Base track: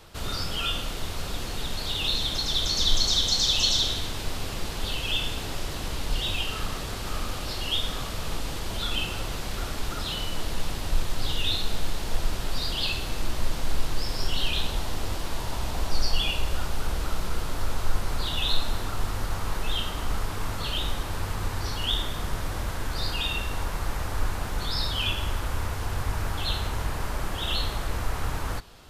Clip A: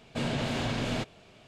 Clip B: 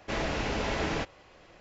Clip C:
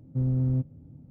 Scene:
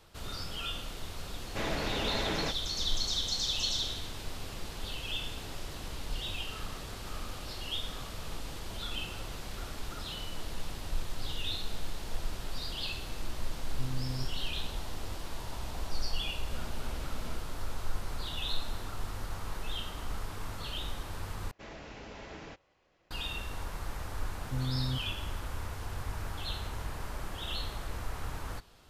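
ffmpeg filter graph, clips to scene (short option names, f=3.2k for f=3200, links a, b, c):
-filter_complex "[2:a]asplit=2[a][b];[3:a]asplit=2[c][d];[0:a]volume=-9dB,asplit=2[e][f];[e]atrim=end=21.514[g];[b]atrim=end=1.6,asetpts=PTS-STARTPTS,volume=-15.5dB[h];[f]atrim=start=23.106[i];[a]atrim=end=1.6,asetpts=PTS-STARTPTS,volume=-3dB,afade=t=in:d=0.004:c=hsin,afade=t=out:st=1.596:d=0.004:c=hsin,adelay=1470[j];[c]atrim=end=1.1,asetpts=PTS-STARTPTS,volume=-12.5dB,afade=t=in:d=0.004:c=hsin,afade=t=out:st=1.096:d=0.004:c=hsin,adelay=13630[k];[1:a]atrim=end=1.47,asetpts=PTS-STARTPTS,volume=-17dB,afade=t=in:d=0.004:c=hsin,afade=t=out:st=1.466:d=0.004:c=hsin,adelay=16340[l];[d]atrim=end=1.1,asetpts=PTS-STARTPTS,volume=-8.5dB,afade=t=in:d=0.004:c=hsin,afade=t=out:st=1.096:d=0.004:c=hsin,adelay=24360[m];[g][h]acrossfade=d=0.004:c1=hsin:c2=hsin[n];[n][i]acrossfade=d=0.004:c1=hsin:c2=hsin[o];[o][j][k][l][m]amix=inputs=5:normalize=0"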